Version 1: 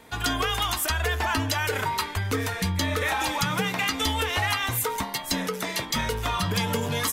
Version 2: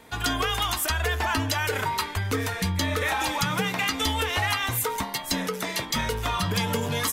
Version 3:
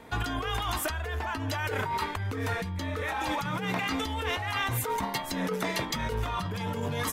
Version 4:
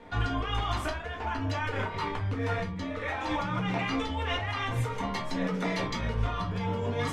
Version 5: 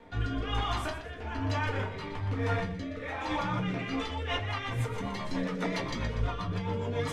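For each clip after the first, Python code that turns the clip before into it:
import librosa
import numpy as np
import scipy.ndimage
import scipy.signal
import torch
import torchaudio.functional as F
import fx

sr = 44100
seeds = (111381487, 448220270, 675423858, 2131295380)

y1 = x
y2 = fx.high_shelf(y1, sr, hz=2800.0, db=-10.0)
y2 = fx.over_compress(y2, sr, threshold_db=-31.0, ratio=-1.0)
y3 = fx.air_absorb(y2, sr, metres=94.0)
y3 = fx.room_shoebox(y3, sr, seeds[0], volume_m3=120.0, walls='furnished', distance_m=1.8)
y3 = y3 * 10.0 ** (-4.0 / 20.0)
y4 = fx.echo_feedback(y3, sr, ms=121, feedback_pct=41, wet_db=-10.5)
y4 = fx.rotary_switch(y4, sr, hz=1.1, then_hz=7.5, switch_at_s=3.8)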